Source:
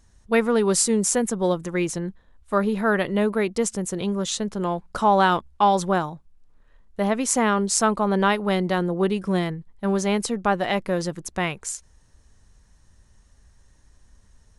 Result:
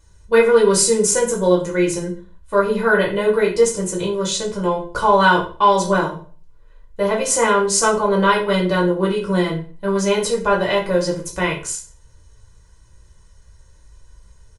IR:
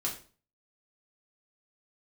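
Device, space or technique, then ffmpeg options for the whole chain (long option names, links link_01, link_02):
microphone above a desk: -filter_complex "[0:a]aecho=1:1:2:0.75[link_01];[1:a]atrim=start_sample=2205[link_02];[link_01][link_02]afir=irnorm=-1:irlink=0"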